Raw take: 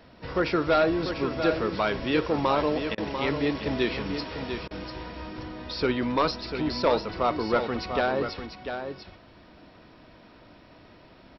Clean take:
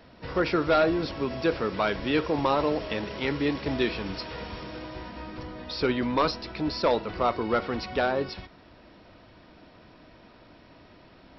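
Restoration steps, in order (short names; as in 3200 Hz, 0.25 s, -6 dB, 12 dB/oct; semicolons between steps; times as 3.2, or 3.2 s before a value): interpolate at 2.95/4.68, 27 ms; inverse comb 0.695 s -8 dB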